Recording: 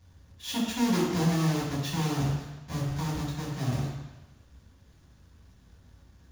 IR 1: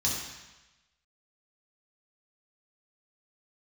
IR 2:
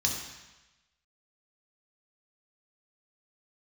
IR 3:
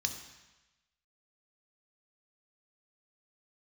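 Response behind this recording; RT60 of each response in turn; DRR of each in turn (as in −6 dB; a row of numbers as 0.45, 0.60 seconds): 1; 1.1, 1.1, 1.1 seconds; −5.5, −1.0, 4.5 decibels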